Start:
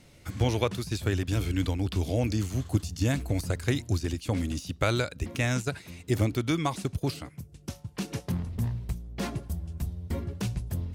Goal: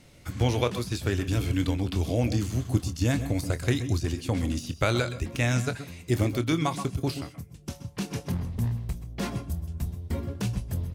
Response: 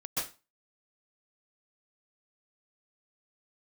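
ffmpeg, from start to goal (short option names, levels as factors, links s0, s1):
-filter_complex "[0:a]asplit=2[s0][s1];[s1]adelay=25,volume=0.237[s2];[s0][s2]amix=inputs=2:normalize=0,asplit=2[s3][s4];[1:a]atrim=start_sample=2205,atrim=end_sample=6174[s5];[s4][s5]afir=irnorm=-1:irlink=0,volume=0.211[s6];[s3][s6]amix=inputs=2:normalize=0"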